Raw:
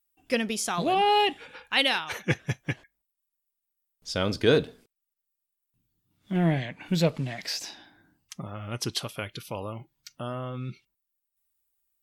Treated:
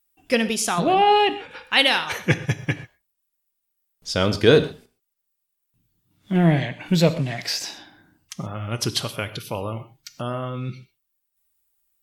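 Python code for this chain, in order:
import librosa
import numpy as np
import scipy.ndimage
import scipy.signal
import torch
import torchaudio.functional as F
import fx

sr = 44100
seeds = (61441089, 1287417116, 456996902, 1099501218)

y = fx.high_shelf(x, sr, hz=4600.0, db=-11.5, at=(0.73, 1.51))
y = fx.rev_gated(y, sr, seeds[0], gate_ms=150, shape='flat', drr_db=12.0)
y = y * librosa.db_to_amplitude(6.0)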